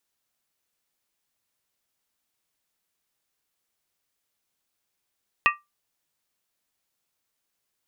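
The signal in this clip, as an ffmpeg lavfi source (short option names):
-f lavfi -i "aevalsrc='0.178*pow(10,-3*t/0.2)*sin(2*PI*1180*t)+0.158*pow(10,-3*t/0.158)*sin(2*PI*1880.9*t)+0.141*pow(10,-3*t/0.137)*sin(2*PI*2520.5*t)+0.126*pow(10,-3*t/0.132)*sin(2*PI*2709.3*t)':d=0.63:s=44100"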